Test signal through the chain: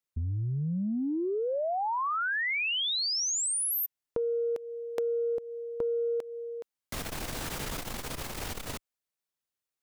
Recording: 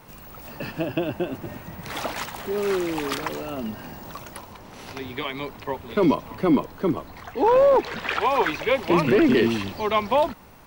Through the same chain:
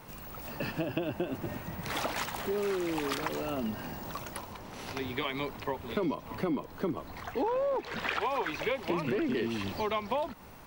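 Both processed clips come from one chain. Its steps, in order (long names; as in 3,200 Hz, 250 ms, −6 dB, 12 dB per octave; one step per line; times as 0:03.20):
downward compressor 6 to 1, threshold −27 dBFS
saturating transformer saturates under 160 Hz
level −1.5 dB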